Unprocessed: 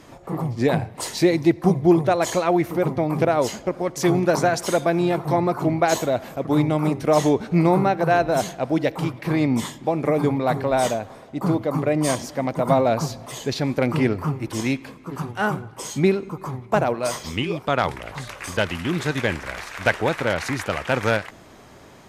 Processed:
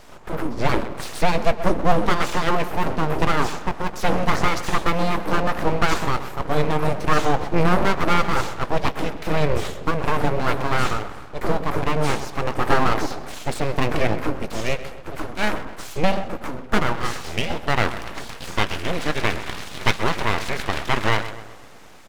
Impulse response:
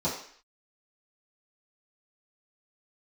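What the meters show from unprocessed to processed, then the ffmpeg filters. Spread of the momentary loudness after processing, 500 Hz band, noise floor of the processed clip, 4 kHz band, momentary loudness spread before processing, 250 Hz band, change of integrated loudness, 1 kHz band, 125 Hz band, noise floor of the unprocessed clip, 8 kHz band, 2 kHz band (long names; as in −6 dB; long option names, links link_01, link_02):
10 LU, −3.5 dB, −38 dBFS, +3.0 dB, 10 LU, −5.0 dB, −1.5 dB, +2.0 dB, −2.0 dB, −46 dBFS, −3.5 dB, +2.5 dB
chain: -filter_complex "[0:a]acrossover=split=4900[link_01][link_02];[link_02]acompressor=threshold=-45dB:ratio=4:attack=1:release=60[link_03];[link_01][link_03]amix=inputs=2:normalize=0,asplit=2[link_04][link_05];[link_05]adelay=19,volume=-13.5dB[link_06];[link_04][link_06]amix=inputs=2:normalize=0,asplit=2[link_07][link_08];[link_08]adelay=128,lowpass=frequency=2100:poles=1,volume=-12dB,asplit=2[link_09][link_10];[link_10]adelay=128,lowpass=frequency=2100:poles=1,volume=0.53,asplit=2[link_11][link_12];[link_12]adelay=128,lowpass=frequency=2100:poles=1,volume=0.53,asplit=2[link_13][link_14];[link_14]adelay=128,lowpass=frequency=2100:poles=1,volume=0.53,asplit=2[link_15][link_16];[link_16]adelay=128,lowpass=frequency=2100:poles=1,volume=0.53,asplit=2[link_17][link_18];[link_18]adelay=128,lowpass=frequency=2100:poles=1,volume=0.53[link_19];[link_07][link_09][link_11][link_13][link_15][link_17][link_19]amix=inputs=7:normalize=0,aeval=exprs='abs(val(0))':channel_layout=same,volume=2.5dB"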